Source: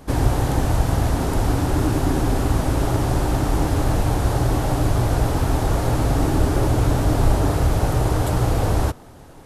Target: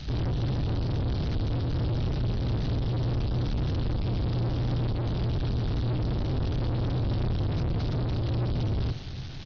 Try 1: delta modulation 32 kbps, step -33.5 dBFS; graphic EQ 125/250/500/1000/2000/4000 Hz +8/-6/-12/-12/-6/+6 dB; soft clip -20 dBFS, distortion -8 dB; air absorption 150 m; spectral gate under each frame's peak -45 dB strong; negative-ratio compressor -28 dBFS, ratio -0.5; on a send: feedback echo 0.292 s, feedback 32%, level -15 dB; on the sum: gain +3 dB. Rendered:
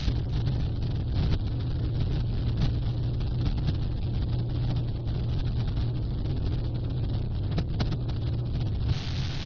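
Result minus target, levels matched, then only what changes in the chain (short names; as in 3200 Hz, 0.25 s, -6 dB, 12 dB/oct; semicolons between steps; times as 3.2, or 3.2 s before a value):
soft clip: distortion -4 dB
change: soft clip -29 dBFS, distortion -5 dB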